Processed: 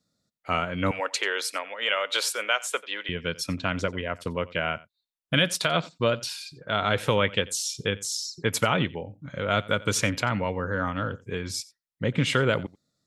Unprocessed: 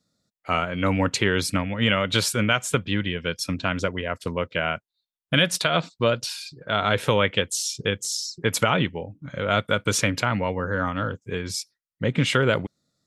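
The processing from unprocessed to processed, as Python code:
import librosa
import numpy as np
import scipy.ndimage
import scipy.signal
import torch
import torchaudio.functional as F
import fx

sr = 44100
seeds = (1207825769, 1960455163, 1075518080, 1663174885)

y = fx.highpass(x, sr, hz=480.0, slope=24, at=(0.91, 3.09))
y = y + 10.0 ** (-21.0 / 20.0) * np.pad(y, (int(89 * sr / 1000.0), 0))[:len(y)]
y = y * 10.0 ** (-2.5 / 20.0)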